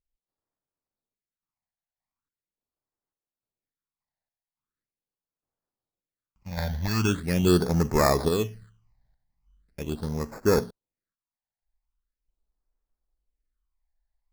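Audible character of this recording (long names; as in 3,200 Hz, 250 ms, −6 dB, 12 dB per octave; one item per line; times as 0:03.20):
aliases and images of a low sample rate 3,000 Hz, jitter 0%
sample-and-hold tremolo 3.5 Hz, depth 70%
phaser sweep stages 8, 0.41 Hz, lowest notch 360–3,400 Hz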